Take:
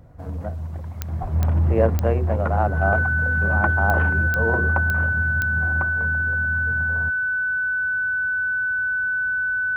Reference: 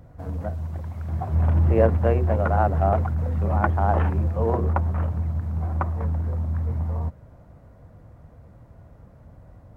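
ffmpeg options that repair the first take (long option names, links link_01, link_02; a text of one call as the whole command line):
ffmpeg -i in.wav -filter_complex "[0:a]adeclick=threshold=4,bandreject=frequency=1500:width=30,asplit=3[link_01][link_02][link_03];[link_01]afade=type=out:start_time=1.21:duration=0.02[link_04];[link_02]highpass=frequency=140:width=0.5412,highpass=frequency=140:width=1.3066,afade=type=in:start_time=1.21:duration=0.02,afade=type=out:start_time=1.33:duration=0.02[link_05];[link_03]afade=type=in:start_time=1.33:duration=0.02[link_06];[link_04][link_05][link_06]amix=inputs=3:normalize=0,asetnsamples=nb_out_samples=441:pad=0,asendcmd='5.81 volume volume 3.5dB',volume=0dB" out.wav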